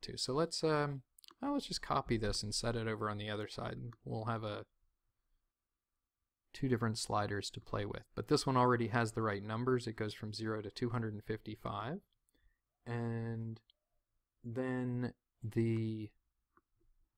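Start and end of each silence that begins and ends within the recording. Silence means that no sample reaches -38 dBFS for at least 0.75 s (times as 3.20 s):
4.60–6.55 s
11.96–12.89 s
13.53–14.46 s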